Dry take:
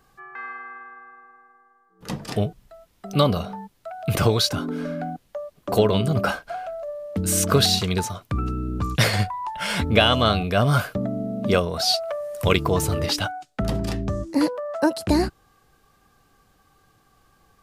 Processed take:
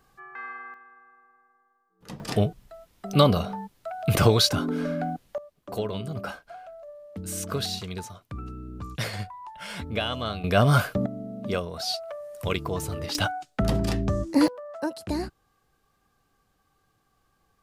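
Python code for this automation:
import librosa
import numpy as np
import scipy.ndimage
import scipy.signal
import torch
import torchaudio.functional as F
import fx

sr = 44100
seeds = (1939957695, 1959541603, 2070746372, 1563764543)

y = fx.gain(x, sr, db=fx.steps((0.0, -3.0), (0.74, -10.0), (2.2, 0.5), (5.38, -11.5), (10.44, 0.0), (11.06, -8.5), (13.15, 0.5), (14.48, -9.5)))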